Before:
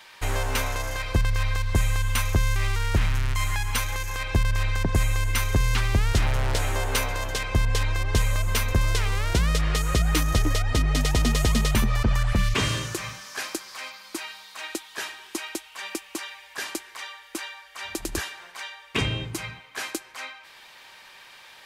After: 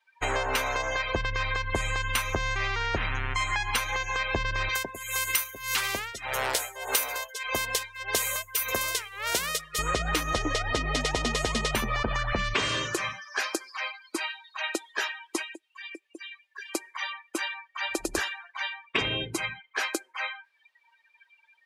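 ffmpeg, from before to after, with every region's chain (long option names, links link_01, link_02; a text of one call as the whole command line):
ffmpeg -i in.wav -filter_complex "[0:a]asettb=1/sr,asplit=3[link_01][link_02][link_03];[link_01]atrim=end=2.364[link_04];[link_02]atrim=start=2.36:end=4.15,asetpts=PTS-STARTPTS,afade=type=in:duration=0.004:curve=qsin,afade=type=out:start_time=1.786:duration=0.004:curve=qsin,highshelf=frequency=10000:gain=-2.5,aeval=exprs='val(0)+0.00251*sin(2*PI*740*n/s)':channel_layout=same[link_05];[link_03]atrim=start=4.146[link_06];[link_04][link_05]acrossfade=duration=0.004:curve1=hsin:curve2=qsin[link_07];[link_07][link_06]acrossfade=duration=0.004:curve1=qsin:curve2=hsin,asettb=1/sr,asplit=3[link_08][link_09][link_10];[link_08]atrim=end=4.694[link_11];[link_09]atrim=start=4.69:end=9.79,asetpts=PTS-STARTPTS,afade=type=in:duration=0.004:curve=qsin,afade=type=out:start_time=5.096:duration=0.004:curve=qsin,aemphasis=mode=production:type=bsi,tremolo=f=1.7:d=0.79[link_12];[link_10]atrim=start=9.786[link_13];[link_11][link_12]acrossfade=duration=0.004:curve1=hsin:curve2=qsin[link_14];[link_14][link_13]acrossfade=duration=0.004:curve1=qsin:curve2=hsin,asettb=1/sr,asplit=3[link_15][link_16][link_17];[link_15]atrim=end=15.424[link_18];[link_16]atrim=start=15.42:end=16.75,asetpts=PTS-STARTPTS,afade=type=in:duration=0.004:curve=qsin,afade=type=out:start_time=1.326:duration=0.004:curve=qsin,equalizer=frequency=740:width=0.48:gain=-6.5,acompressor=threshold=-39dB:ratio=3:attack=3.2:release=140:knee=1:detection=peak[link_19];[link_17]atrim=start=16.746[link_20];[link_18][link_19]acrossfade=duration=0.004:curve1=hsin:curve2=qsin[link_21];[link_21][link_20]acrossfade=duration=0.004:curve1=qsin:curve2=hsin,afftdn=noise_reduction=35:noise_floor=-37,bass=frequency=250:gain=-14,treble=frequency=4000:gain=-2,acompressor=threshold=-30dB:ratio=6,volume=6.5dB" out.wav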